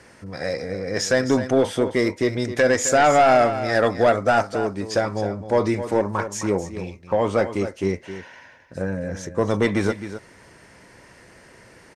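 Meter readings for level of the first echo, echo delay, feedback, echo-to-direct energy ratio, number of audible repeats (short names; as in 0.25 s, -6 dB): -11.5 dB, 0.263 s, no steady repeat, -11.5 dB, 1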